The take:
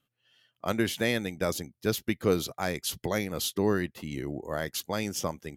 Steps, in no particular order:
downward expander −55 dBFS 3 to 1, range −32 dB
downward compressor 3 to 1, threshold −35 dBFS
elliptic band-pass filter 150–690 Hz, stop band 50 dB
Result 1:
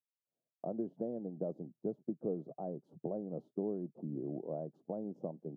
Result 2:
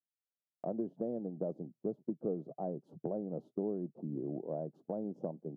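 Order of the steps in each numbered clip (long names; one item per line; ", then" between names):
downward compressor, then downward expander, then elliptic band-pass filter
elliptic band-pass filter, then downward compressor, then downward expander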